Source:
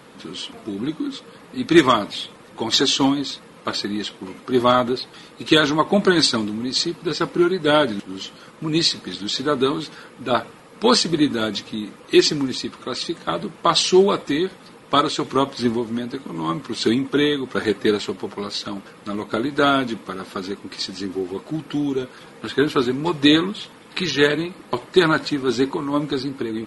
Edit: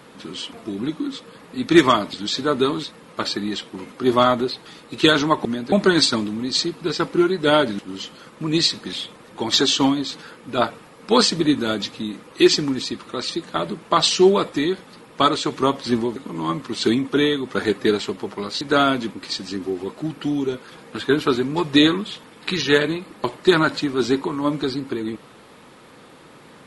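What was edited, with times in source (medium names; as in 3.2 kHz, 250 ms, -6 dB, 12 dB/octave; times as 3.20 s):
2.13–3.32 s: swap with 9.14–9.85 s
15.89–16.16 s: move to 5.93 s
18.61–19.48 s: delete
20.00–20.62 s: delete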